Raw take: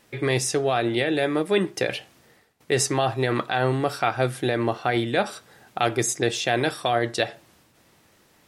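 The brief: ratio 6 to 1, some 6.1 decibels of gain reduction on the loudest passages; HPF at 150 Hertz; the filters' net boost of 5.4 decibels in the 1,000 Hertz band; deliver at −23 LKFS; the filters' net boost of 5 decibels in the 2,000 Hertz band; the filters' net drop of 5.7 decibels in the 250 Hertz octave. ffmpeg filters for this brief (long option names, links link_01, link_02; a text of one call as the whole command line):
ffmpeg -i in.wav -af "highpass=150,equalizer=frequency=250:width_type=o:gain=-9,equalizer=frequency=1000:width_type=o:gain=8.5,equalizer=frequency=2000:width_type=o:gain=3.5,acompressor=threshold=-20dB:ratio=6,volume=3dB" out.wav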